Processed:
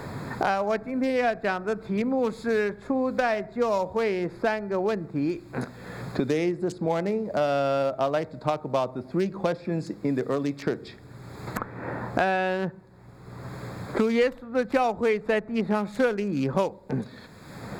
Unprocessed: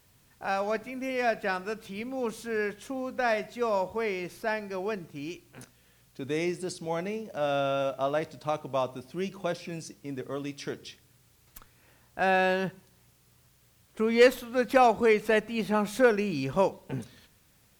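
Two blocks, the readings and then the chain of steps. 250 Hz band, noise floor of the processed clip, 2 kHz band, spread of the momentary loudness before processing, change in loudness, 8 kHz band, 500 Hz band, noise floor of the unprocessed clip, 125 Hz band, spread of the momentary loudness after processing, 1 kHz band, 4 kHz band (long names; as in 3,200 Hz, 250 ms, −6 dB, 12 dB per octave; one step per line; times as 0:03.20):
+5.5 dB, −47 dBFS, 0.0 dB, 16 LU, +2.0 dB, can't be measured, +2.0 dB, −63 dBFS, +6.5 dB, 12 LU, +1.5 dB, −1.0 dB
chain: adaptive Wiener filter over 15 samples
high-shelf EQ 9,300 Hz −5 dB
multiband upward and downward compressor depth 100%
level +3.5 dB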